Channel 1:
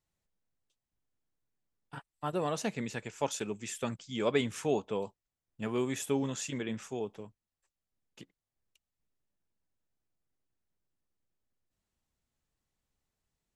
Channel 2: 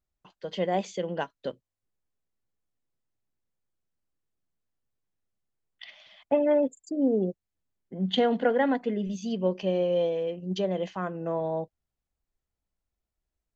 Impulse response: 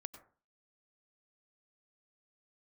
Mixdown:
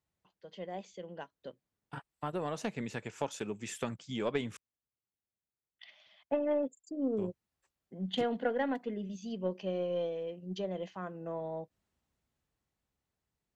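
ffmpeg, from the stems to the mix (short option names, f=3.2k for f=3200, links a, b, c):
-filter_complex "[0:a]highshelf=f=3.8k:g=-7,acompressor=threshold=-46dB:ratio=2,volume=2.5dB,asplit=3[a][b][c];[a]atrim=end=4.57,asetpts=PTS-STARTPTS,afade=t=out:st=4.566:d=0.004:c=hsin[d];[b]atrim=start=4.57:end=7.17,asetpts=PTS-STARTPTS,volume=0[e];[c]atrim=start=7.17,asetpts=PTS-STARTPTS,afade=t=in:d=0.004:c=hsin[f];[d][e][f]concat=n=3:v=0:a=1[g];[1:a]volume=-12.5dB[h];[g][h]amix=inputs=2:normalize=0,highpass=50,dynaudnorm=f=270:g=13:m=6dB,aeval=exprs='0.126*(cos(1*acos(clip(val(0)/0.126,-1,1)))-cos(1*PI/2))+0.00708*(cos(2*acos(clip(val(0)/0.126,-1,1)))-cos(2*PI/2))+0.01*(cos(3*acos(clip(val(0)/0.126,-1,1)))-cos(3*PI/2))':c=same"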